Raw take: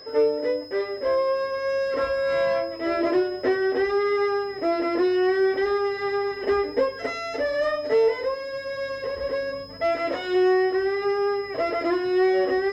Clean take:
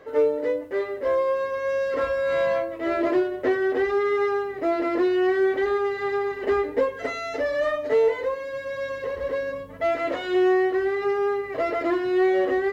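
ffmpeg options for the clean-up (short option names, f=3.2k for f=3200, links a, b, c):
-af "bandreject=f=5.1k:w=30"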